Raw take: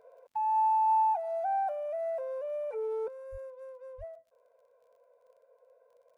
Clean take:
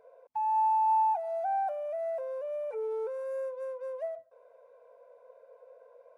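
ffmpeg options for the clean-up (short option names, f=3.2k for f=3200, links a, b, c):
-filter_complex "[0:a]adeclick=t=4,asplit=3[a][b][c];[a]afade=t=out:st=3.31:d=0.02[d];[b]highpass=f=140:w=0.5412,highpass=f=140:w=1.3066,afade=t=in:st=3.31:d=0.02,afade=t=out:st=3.43:d=0.02[e];[c]afade=t=in:st=3.43:d=0.02[f];[d][e][f]amix=inputs=3:normalize=0,asplit=3[g][h][i];[g]afade=t=out:st=3.97:d=0.02[j];[h]highpass=f=140:w=0.5412,highpass=f=140:w=1.3066,afade=t=in:st=3.97:d=0.02,afade=t=out:st=4.09:d=0.02[k];[i]afade=t=in:st=4.09:d=0.02[l];[j][k][l]amix=inputs=3:normalize=0,asetnsamples=n=441:p=0,asendcmd='3.08 volume volume 8.5dB',volume=0dB"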